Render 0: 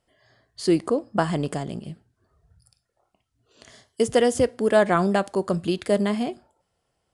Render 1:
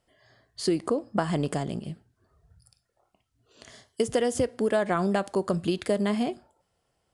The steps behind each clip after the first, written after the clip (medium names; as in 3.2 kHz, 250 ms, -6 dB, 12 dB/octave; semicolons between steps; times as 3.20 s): compression 6:1, threshold -21 dBFS, peak gain reduction 8.5 dB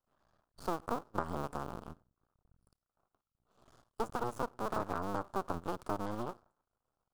cycle switcher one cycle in 2, muted; half-wave rectifier; resonant high shelf 1.6 kHz -7 dB, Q 3; trim -6 dB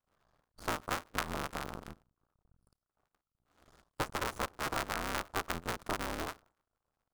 cycle switcher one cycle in 3, inverted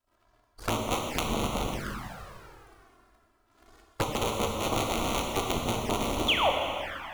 painted sound fall, 6.28–6.50 s, 490–3700 Hz -30 dBFS; plate-style reverb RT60 2.8 s, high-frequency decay 0.9×, DRR 0 dB; touch-sensitive flanger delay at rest 3.1 ms, full sweep at -32.5 dBFS; trim +8 dB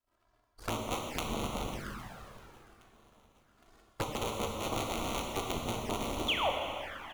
feedback delay 814 ms, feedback 48%, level -22.5 dB; trim -6 dB